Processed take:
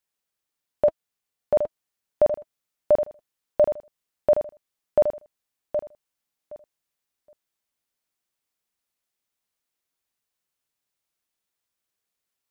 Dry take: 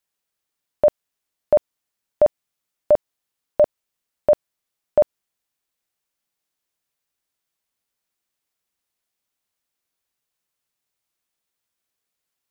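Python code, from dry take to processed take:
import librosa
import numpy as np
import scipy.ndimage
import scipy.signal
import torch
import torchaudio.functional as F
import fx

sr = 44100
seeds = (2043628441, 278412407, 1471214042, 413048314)

y = fx.notch_comb(x, sr, f0_hz=320.0, at=(0.85, 1.55), fade=0.02)
y = fx.echo_feedback(y, sr, ms=769, feedback_pct=18, wet_db=-8.0)
y = F.gain(torch.from_numpy(y), -3.0).numpy()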